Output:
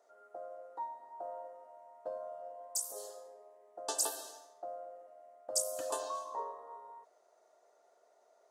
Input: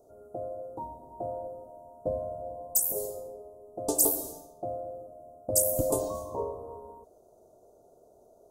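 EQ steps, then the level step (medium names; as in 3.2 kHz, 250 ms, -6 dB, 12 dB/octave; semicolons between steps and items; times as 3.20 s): resonant high-pass 1.9 kHz, resonance Q 7.6; tape spacing loss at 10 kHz 21 dB; treble shelf 8 kHz -4 dB; +11.5 dB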